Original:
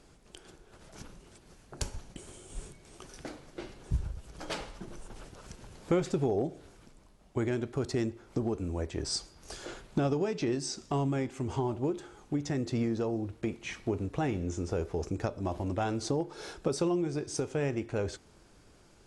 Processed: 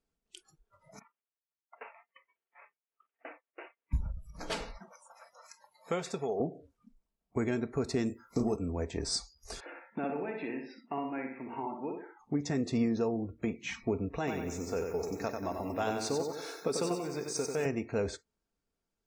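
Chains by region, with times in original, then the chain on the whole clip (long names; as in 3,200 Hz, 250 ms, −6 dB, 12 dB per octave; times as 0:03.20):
0:00.99–0:03.93: variable-slope delta modulation 16 kbit/s + downward expander −44 dBFS + high-pass filter 530 Hz
0:04.78–0:06.40: high-pass filter 230 Hz + parametric band 290 Hz −11.5 dB 0.88 octaves
0:08.06–0:08.56: high-shelf EQ 3,500 Hz +8.5 dB + double-tracking delay 33 ms −6.5 dB
0:09.60–0:12.20: loudspeaker in its box 370–2,700 Hz, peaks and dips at 410 Hz −9 dB, 650 Hz −5 dB, 1,200 Hz −7 dB + repeating echo 61 ms, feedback 49%, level −4.5 dB
0:14.18–0:17.66: low-shelf EQ 280 Hz −9 dB + feedback echo at a low word length 93 ms, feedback 55%, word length 9 bits, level −4.5 dB
whole clip: noise reduction from a noise print of the clip's start 28 dB; comb filter 4.4 ms, depth 39%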